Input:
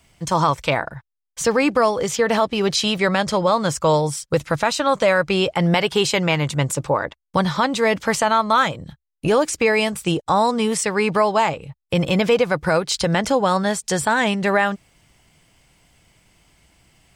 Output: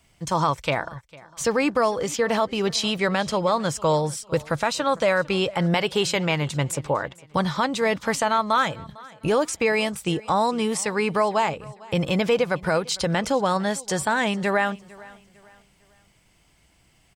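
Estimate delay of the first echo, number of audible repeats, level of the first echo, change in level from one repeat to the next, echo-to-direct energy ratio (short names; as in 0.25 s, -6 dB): 0.452 s, 2, -22.0 dB, -9.0 dB, -21.5 dB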